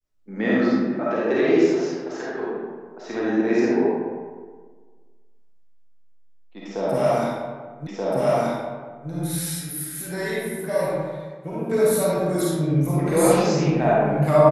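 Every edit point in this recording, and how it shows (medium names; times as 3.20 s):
7.87 s: repeat of the last 1.23 s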